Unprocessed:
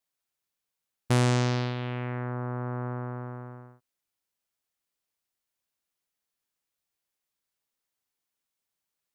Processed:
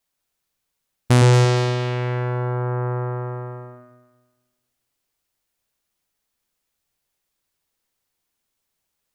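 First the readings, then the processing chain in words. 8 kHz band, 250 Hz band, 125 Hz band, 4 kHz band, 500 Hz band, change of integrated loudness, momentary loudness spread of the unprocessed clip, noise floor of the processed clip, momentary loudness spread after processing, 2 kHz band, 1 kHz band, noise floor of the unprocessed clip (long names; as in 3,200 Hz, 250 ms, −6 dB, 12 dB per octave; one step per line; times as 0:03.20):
+8.0 dB, +5.5 dB, +10.5 dB, +8.0 dB, +10.5 dB, +9.5 dB, 17 LU, −78 dBFS, 17 LU, +7.5 dB, +8.0 dB, below −85 dBFS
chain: low-shelf EQ 73 Hz +9 dB
delay that swaps between a low-pass and a high-pass 115 ms, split 820 Hz, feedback 54%, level −2 dB
level +7 dB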